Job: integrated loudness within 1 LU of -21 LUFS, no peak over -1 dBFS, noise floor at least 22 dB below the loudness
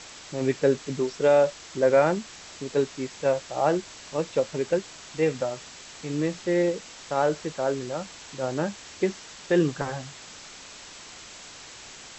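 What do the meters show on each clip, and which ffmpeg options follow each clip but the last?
noise floor -45 dBFS; noise floor target -49 dBFS; loudness -26.5 LUFS; peak level -9.5 dBFS; loudness target -21.0 LUFS
-> -af "afftdn=nr=6:nf=-45"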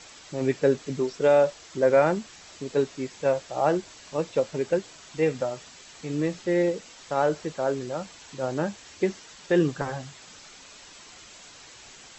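noise floor -49 dBFS; loudness -26.5 LUFS; peak level -9.5 dBFS; loudness target -21.0 LUFS
-> -af "volume=1.88"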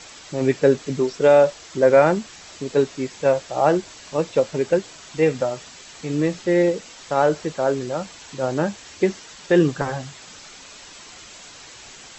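loudness -21.0 LUFS; peak level -4.0 dBFS; noise floor -43 dBFS

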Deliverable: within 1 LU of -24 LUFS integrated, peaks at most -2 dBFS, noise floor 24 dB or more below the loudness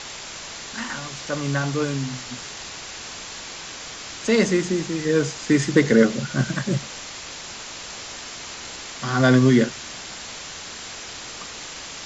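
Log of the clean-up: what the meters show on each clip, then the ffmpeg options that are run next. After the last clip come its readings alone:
noise floor -37 dBFS; noise floor target -49 dBFS; loudness -24.5 LUFS; peak level -3.5 dBFS; loudness target -24.0 LUFS
-> -af "afftdn=nr=12:nf=-37"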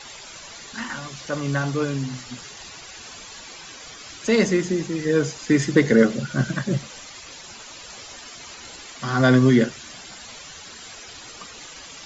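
noise floor -41 dBFS; noise floor target -46 dBFS
-> -af "afftdn=nr=6:nf=-41"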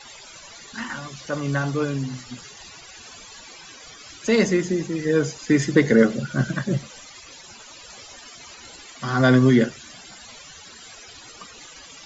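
noise floor -44 dBFS; noise floor target -46 dBFS
-> -af "afftdn=nr=6:nf=-44"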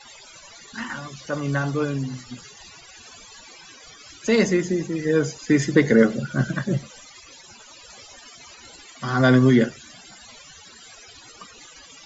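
noise floor -47 dBFS; loudness -21.5 LUFS; peak level -3.5 dBFS; loudness target -24.0 LUFS
-> -af "volume=0.75"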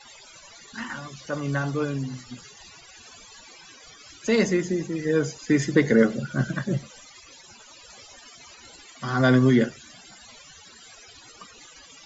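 loudness -24.0 LUFS; peak level -6.0 dBFS; noise floor -49 dBFS

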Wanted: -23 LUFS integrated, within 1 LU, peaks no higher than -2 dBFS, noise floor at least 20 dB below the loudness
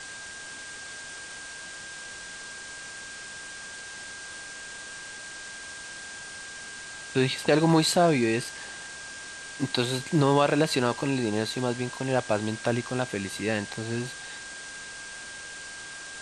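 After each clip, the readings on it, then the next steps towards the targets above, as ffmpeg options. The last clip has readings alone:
steady tone 1.6 kHz; tone level -41 dBFS; noise floor -41 dBFS; noise floor target -50 dBFS; loudness -29.5 LUFS; peak level -8.5 dBFS; loudness target -23.0 LUFS
-> -af "bandreject=f=1600:w=30"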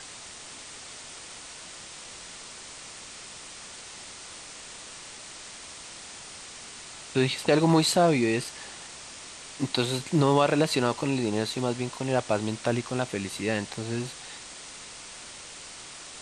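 steady tone not found; noise floor -44 dBFS; noise floor target -46 dBFS
-> -af "afftdn=nr=6:nf=-44"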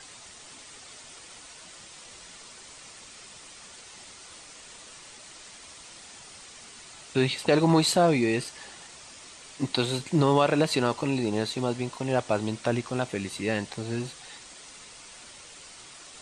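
noise floor -48 dBFS; loudness -26.5 LUFS; peak level -9.0 dBFS; loudness target -23.0 LUFS
-> -af "volume=1.5"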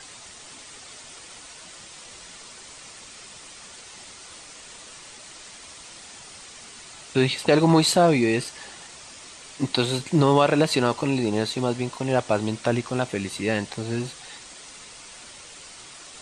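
loudness -22.5 LUFS; peak level -5.5 dBFS; noise floor -44 dBFS

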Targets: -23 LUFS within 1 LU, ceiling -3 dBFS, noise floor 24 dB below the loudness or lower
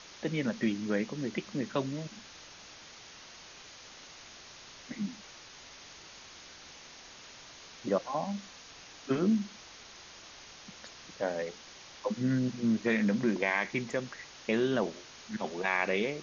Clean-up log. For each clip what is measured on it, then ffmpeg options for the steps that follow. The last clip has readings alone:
noise floor -51 dBFS; noise floor target -57 dBFS; loudness -32.5 LUFS; peak level -14.5 dBFS; loudness target -23.0 LUFS
-> -af "afftdn=nr=6:nf=-51"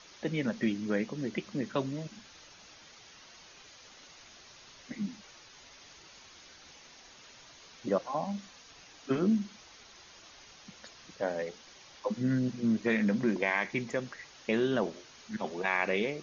noise floor -55 dBFS; noise floor target -57 dBFS
-> -af "afftdn=nr=6:nf=-55"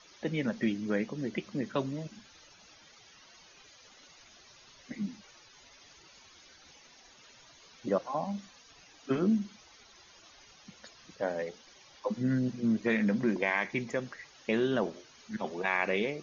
noise floor -58 dBFS; loudness -32.5 LUFS; peak level -14.5 dBFS; loudness target -23.0 LUFS
-> -af "volume=2.99"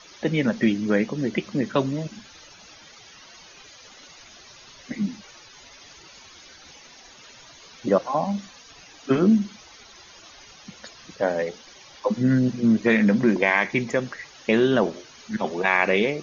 loudness -23.0 LUFS; peak level -5.0 dBFS; noise floor -48 dBFS

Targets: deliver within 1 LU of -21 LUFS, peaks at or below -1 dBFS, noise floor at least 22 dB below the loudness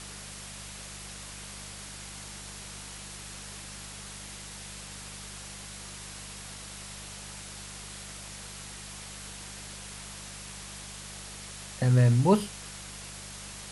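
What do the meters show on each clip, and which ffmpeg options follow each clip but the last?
hum 50 Hz; highest harmonic 200 Hz; hum level -46 dBFS; noise floor -43 dBFS; noise floor target -57 dBFS; loudness -34.5 LUFS; peak level -10.0 dBFS; loudness target -21.0 LUFS
-> -af "bandreject=f=50:t=h:w=4,bandreject=f=100:t=h:w=4,bandreject=f=150:t=h:w=4,bandreject=f=200:t=h:w=4"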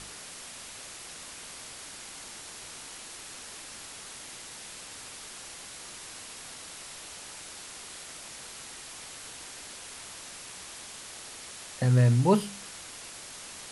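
hum not found; noise floor -45 dBFS; noise floor target -57 dBFS
-> -af "afftdn=nr=12:nf=-45"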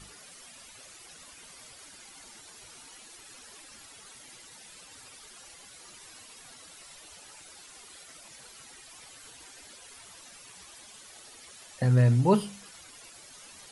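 noise floor -51 dBFS; loudness -24.5 LUFS; peak level -11.5 dBFS; loudness target -21.0 LUFS
-> -af "volume=1.5"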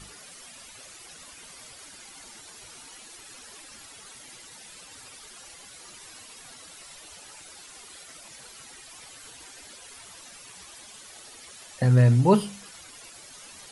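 loudness -21.0 LUFS; peak level -8.0 dBFS; noise floor -48 dBFS

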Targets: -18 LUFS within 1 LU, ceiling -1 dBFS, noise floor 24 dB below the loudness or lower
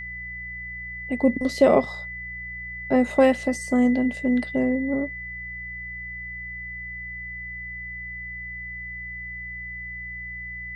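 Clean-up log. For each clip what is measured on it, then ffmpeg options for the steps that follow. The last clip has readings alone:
hum 60 Hz; highest harmonic 180 Hz; hum level -41 dBFS; steady tone 2 kHz; tone level -33 dBFS; loudness -26.0 LUFS; peak level -5.5 dBFS; loudness target -18.0 LUFS
-> -af "bandreject=f=60:t=h:w=4,bandreject=f=120:t=h:w=4,bandreject=f=180:t=h:w=4"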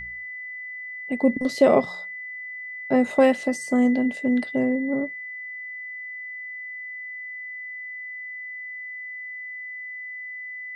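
hum not found; steady tone 2 kHz; tone level -33 dBFS
-> -af "bandreject=f=2000:w=30"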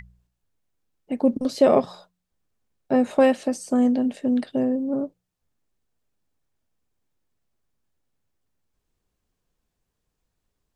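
steady tone not found; loudness -22.0 LUFS; peak level -5.5 dBFS; loudness target -18.0 LUFS
-> -af "volume=1.58"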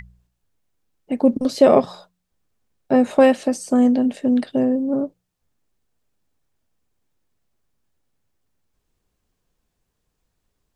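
loudness -18.0 LUFS; peak level -1.5 dBFS; noise floor -76 dBFS

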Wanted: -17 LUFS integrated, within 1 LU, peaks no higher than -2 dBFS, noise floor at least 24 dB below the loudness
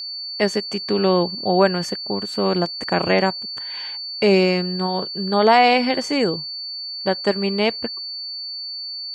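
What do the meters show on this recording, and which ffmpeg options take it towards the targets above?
steady tone 4.5 kHz; tone level -28 dBFS; loudness -20.5 LUFS; peak level -2.0 dBFS; loudness target -17.0 LUFS
-> -af "bandreject=f=4500:w=30"
-af "volume=1.5,alimiter=limit=0.794:level=0:latency=1"

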